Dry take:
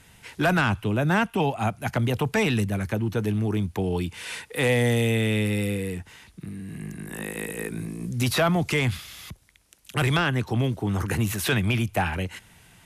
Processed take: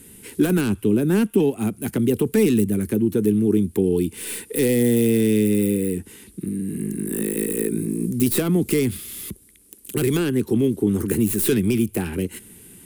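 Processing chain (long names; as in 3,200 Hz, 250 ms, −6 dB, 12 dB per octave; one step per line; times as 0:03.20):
stylus tracing distortion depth 0.066 ms
in parallel at +2.5 dB: downward compressor, threshold −32 dBFS, peak gain reduction 13.5 dB
on the sum: drawn EQ curve 140 Hz 0 dB, 210 Hz +11 dB, 410 Hz +13 dB, 650 Hz −9 dB, 1,600 Hz −5 dB, 3,100 Hz −2 dB, 6,100 Hz −1 dB, 9,200 Hz +14 dB
level −5.5 dB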